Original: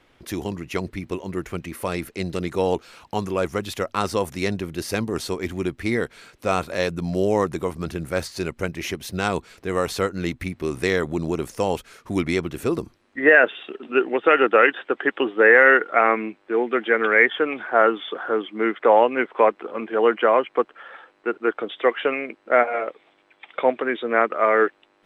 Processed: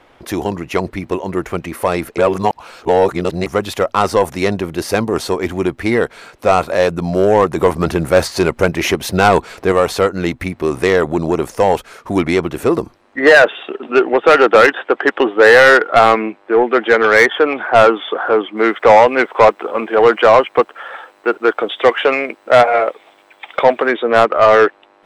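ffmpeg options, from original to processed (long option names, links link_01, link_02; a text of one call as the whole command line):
ffmpeg -i in.wav -filter_complex "[0:a]asettb=1/sr,asplit=3[link_01][link_02][link_03];[link_01]atrim=end=7.574[link_04];[link_02]atrim=start=7.57:end=9.72,asetpts=PTS-STARTPTS,afade=type=in:duration=0.004:curve=qsin,afade=type=out:start_time=2.146:duration=0.004:curve=qsin,acontrast=27[link_05];[link_03]atrim=start=9.716[link_06];[link_04][link_05]acrossfade=duration=0.004:curve1=hsin:curve2=qsin[link_07];[link_07][link_06]acrossfade=duration=0.004:curve1=qsin:curve2=hsin,asplit=3[link_08][link_09][link_10];[link_08]afade=type=out:start_time=18.56:duration=0.02[link_11];[link_09]aemphasis=mode=production:type=75fm,afade=type=in:start_time=18.56:duration=0.02,afade=type=out:start_time=23.9:duration=0.02[link_12];[link_10]afade=type=in:start_time=23.9:duration=0.02[link_13];[link_11][link_12][link_13]amix=inputs=3:normalize=0,asplit=3[link_14][link_15][link_16];[link_14]atrim=end=2.182[link_17];[link_15]atrim=start=2.178:end=3.462,asetpts=PTS-STARTPTS,areverse[link_18];[link_16]atrim=start=3.458[link_19];[link_17][link_18]acrossfade=duration=0.004:curve1=hsin:curve2=hsin[link_20];[link_20][link_19]acrossfade=duration=0.004:curve1=hsin:curve2=hsin,equalizer=frequency=770:width=0.71:gain=9,acontrast=68,volume=-1dB" out.wav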